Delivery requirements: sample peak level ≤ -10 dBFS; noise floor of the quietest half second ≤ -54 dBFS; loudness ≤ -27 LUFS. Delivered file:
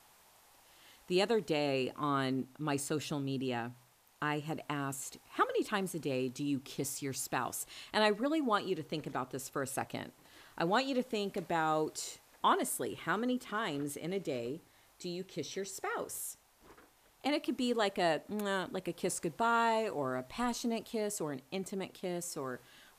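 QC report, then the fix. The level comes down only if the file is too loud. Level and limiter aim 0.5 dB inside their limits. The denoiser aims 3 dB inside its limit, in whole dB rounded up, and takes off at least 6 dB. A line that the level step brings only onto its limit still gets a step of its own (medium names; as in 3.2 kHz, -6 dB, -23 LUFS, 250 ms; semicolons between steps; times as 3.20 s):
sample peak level -17.0 dBFS: pass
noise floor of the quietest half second -63 dBFS: pass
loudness -35.5 LUFS: pass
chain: none needed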